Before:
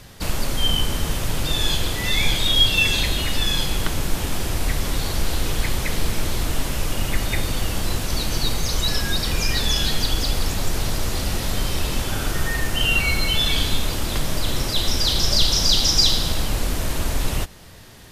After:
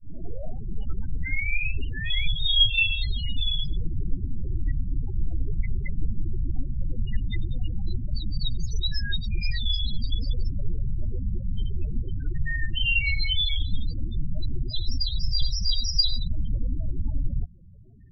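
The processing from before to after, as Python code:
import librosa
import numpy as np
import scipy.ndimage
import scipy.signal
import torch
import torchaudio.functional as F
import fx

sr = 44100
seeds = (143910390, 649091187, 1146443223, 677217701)

y = fx.tape_start_head(x, sr, length_s=2.23)
y = fx.spec_topn(y, sr, count=8)
y = y * 10.0 ** (-2.5 / 20.0)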